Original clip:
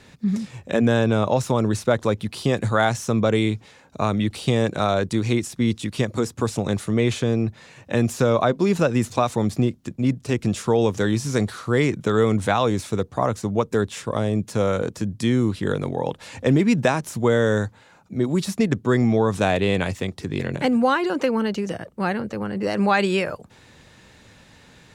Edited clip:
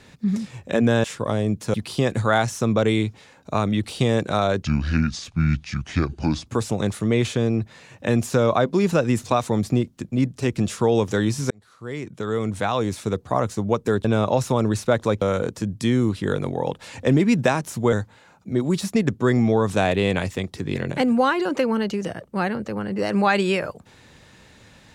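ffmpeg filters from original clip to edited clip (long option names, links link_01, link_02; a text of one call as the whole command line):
ffmpeg -i in.wav -filter_complex "[0:a]asplit=9[link_01][link_02][link_03][link_04][link_05][link_06][link_07][link_08][link_09];[link_01]atrim=end=1.042[link_10];[link_02]atrim=start=13.908:end=14.612[link_11];[link_03]atrim=start=2.208:end=5.104[link_12];[link_04]atrim=start=5.1:end=6.33,asetpts=PTS-STARTPTS,asetrate=29547,aresample=44100[link_13];[link_05]atrim=start=6.326:end=11.37,asetpts=PTS-STARTPTS,afade=type=out:start_time=5.04:duration=0.004:curve=hsin[link_14];[link_06]atrim=start=11.37:end=13.912,asetpts=PTS-STARTPTS,afade=type=in:duration=1.72[link_15];[link_07]atrim=start=1.038:end=2.212[link_16];[link_08]atrim=start=14.608:end=17.322[link_17];[link_09]atrim=start=17.568[link_18];[link_10][link_11]acrossfade=duration=0.004:curve1=hsin:curve2=hsin[link_19];[link_19][link_12]acrossfade=duration=0.004:curve1=hsin:curve2=hsin[link_20];[link_20][link_13]acrossfade=duration=0.004:curve1=hsin:curve2=hsin[link_21];[link_14][link_15]concat=n=2:v=0:a=1[link_22];[link_21][link_22]acrossfade=duration=0.004:curve1=hsin:curve2=hsin[link_23];[link_23][link_16]acrossfade=duration=0.004:curve1=hsin:curve2=hsin[link_24];[link_24][link_17]acrossfade=duration=0.004:curve1=hsin:curve2=hsin[link_25];[link_25][link_18]acrossfade=duration=0.004:curve1=hsin:curve2=hsin" out.wav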